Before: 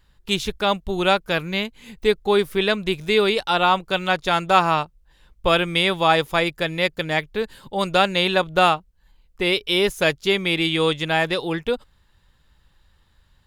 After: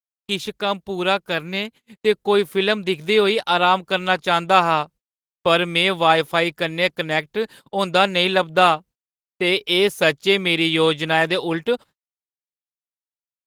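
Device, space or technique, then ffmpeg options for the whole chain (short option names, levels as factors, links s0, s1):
video call: -af "highpass=150,dynaudnorm=f=620:g=7:m=5.01,agate=range=0.00224:threshold=0.0126:ratio=16:detection=peak,volume=0.891" -ar 48000 -c:a libopus -b:a 20k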